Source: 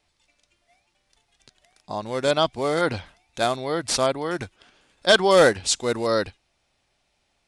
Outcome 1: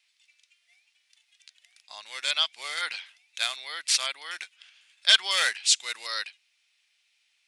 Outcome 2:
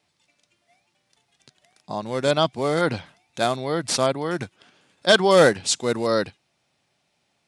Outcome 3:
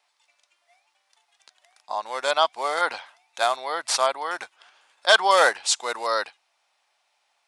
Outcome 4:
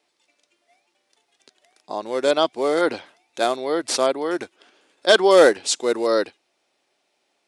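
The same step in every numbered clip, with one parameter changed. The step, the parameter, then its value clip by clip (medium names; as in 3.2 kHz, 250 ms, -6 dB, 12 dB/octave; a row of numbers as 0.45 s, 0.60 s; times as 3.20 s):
resonant high-pass, frequency: 2.4 kHz, 140 Hz, 880 Hz, 340 Hz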